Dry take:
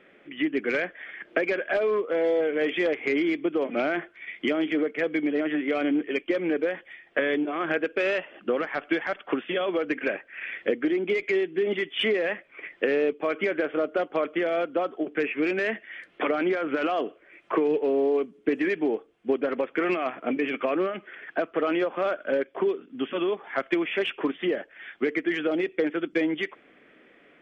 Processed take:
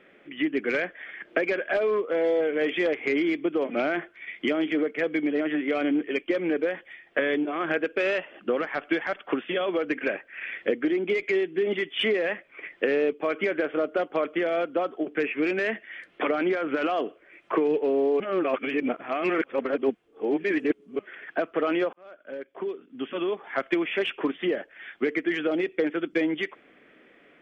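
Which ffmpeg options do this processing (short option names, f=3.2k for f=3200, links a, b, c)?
-filter_complex "[0:a]asplit=4[a][b][c][d];[a]atrim=end=18.202[e];[b]atrim=start=18.198:end=20.992,asetpts=PTS-STARTPTS,areverse[f];[c]atrim=start=20.988:end=21.93,asetpts=PTS-STARTPTS,afade=t=out:st=0.938:d=0.004:c=hsin[g];[d]atrim=start=21.93,asetpts=PTS-STARTPTS,afade=t=in:d=1.59[h];[e][f]acrossfade=d=0.004:c1=hsin:c2=hsin[i];[g][h]concat=n=2:v=0:a=1[j];[i][j]acrossfade=d=0.004:c1=hsin:c2=hsin"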